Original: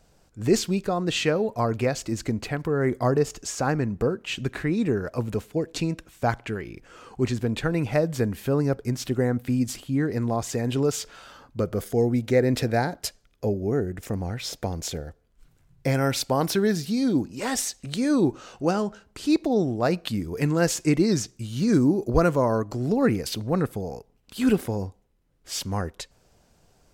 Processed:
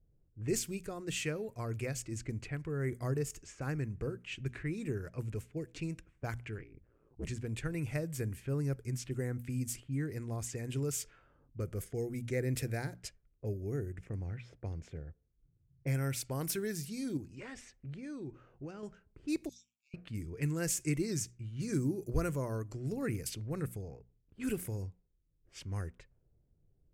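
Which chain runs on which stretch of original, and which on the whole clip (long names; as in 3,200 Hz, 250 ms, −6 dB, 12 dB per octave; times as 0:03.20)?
0:06.58–0:07.27: ring modulation 58 Hz + dynamic equaliser 3,100 Hz, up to −3 dB, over −49 dBFS, Q 0.7 + highs frequency-modulated by the lows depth 0.53 ms
0:14.07–0:16.25: high-pass filter 45 Hz + high-shelf EQ 3,100 Hz −4.5 dB
0:17.17–0:18.83: high-shelf EQ 8,000 Hz −8.5 dB + downward compressor 4 to 1, threshold −27 dBFS
0:19.49–0:19.94: linear-phase brick-wall band-pass 2,200–13,000 Hz + parametric band 6,800 Hz +14.5 dB 0.26 octaves
whole clip: mains-hum notches 60/120/180/240 Hz; low-pass that shuts in the quiet parts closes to 430 Hz, open at −22.5 dBFS; drawn EQ curve 140 Hz 0 dB, 200 Hz −10 dB, 360 Hz −6 dB, 800 Hz −15 dB, 2,300 Hz −2 dB, 3,900 Hz −10 dB, 8,600 Hz +5 dB; level −6.5 dB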